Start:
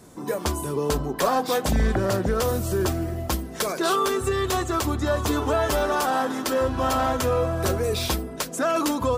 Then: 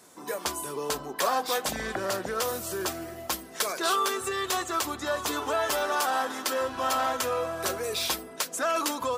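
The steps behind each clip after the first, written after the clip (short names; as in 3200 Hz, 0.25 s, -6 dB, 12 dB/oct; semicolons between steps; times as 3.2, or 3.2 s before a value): HPF 960 Hz 6 dB/oct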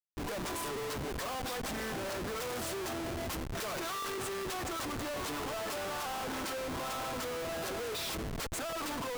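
compressor 16:1, threshold -30 dBFS, peak gain reduction 9.5 dB; Schmitt trigger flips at -39.5 dBFS; gain -2 dB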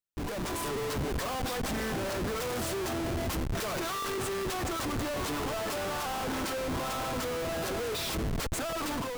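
low shelf 290 Hz +5.5 dB; AGC gain up to 3 dB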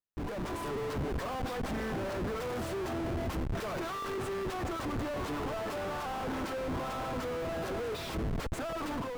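high shelf 3400 Hz -12 dB; gain -1.5 dB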